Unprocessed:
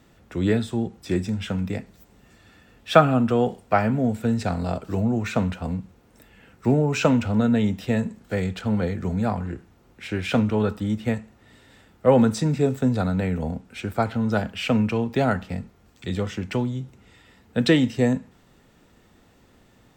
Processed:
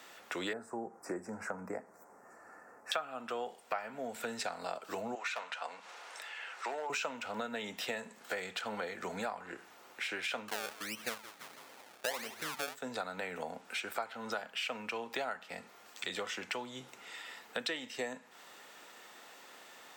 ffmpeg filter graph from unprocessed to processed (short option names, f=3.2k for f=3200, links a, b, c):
-filter_complex "[0:a]asettb=1/sr,asplit=3[a][b][c];[a]atrim=end=0.534[d];[b]atrim=start=0.53:end=2.92,asetpts=PTS-STARTPTS,afade=t=in:d=0.004:c=qsin,afade=t=out:st=2.386:d=0.004:c=qsin,asuperstop=centerf=3300:order=4:qfactor=0.51,aemphasis=mode=reproduction:type=50fm[e];[c]atrim=start=2.916[f];[d][e]acrossfade=d=0.004:c1=hsin:c2=qsin[g];[g][f]acrossfade=d=0.004:c1=qsin:c2=hsin,asettb=1/sr,asplit=3[h][i][j];[h]atrim=end=5.154[k];[i]atrim=start=5.15:end=6.9,asetpts=PTS-STARTPTS,afade=t=in:d=0.004:c=qsin,afade=t=out:st=1.746:d=0.004:c=qsin,highpass=680,lowpass=6.7k,acompressor=mode=upward:threshold=-46dB:ratio=2.5:attack=3.2:release=140:knee=2.83:detection=peak,asoftclip=type=hard:threshold=-25dB[l];[j]atrim=start=6.896[m];[k][l]acrossfade=d=0.004:c1=hsin:c2=qsin[n];[n][m]acrossfade=d=0.004:c1=qsin:c2=hsin,asettb=1/sr,asplit=3[o][p][q];[o]atrim=end=10.484[r];[p]atrim=start=10.48:end=12.75,asetpts=PTS-STARTPTS,afade=t=in:d=0.004:c=qsin,afade=t=out:st=2.266:d=0.004:c=qsin,lowpass=1.1k,acrusher=samples=30:mix=1:aa=0.000001:lfo=1:lforange=30:lforate=1.5,asplit=4[s][t][u][v];[t]adelay=165,afreqshift=-130,volume=-17.5dB[w];[u]adelay=330,afreqshift=-260,volume=-25.2dB[x];[v]adelay=495,afreqshift=-390,volume=-33dB[y];[s][w][x][y]amix=inputs=4:normalize=0,atrim=end_sample=100107[z];[q]atrim=start=12.746[aa];[r][z]acrossfade=d=0.004:c1=hsin:c2=qsin[ab];[ab][aa]acrossfade=d=0.004:c1=qsin:c2=hsin,highpass=750,acompressor=threshold=-45dB:ratio=6,volume=8.5dB"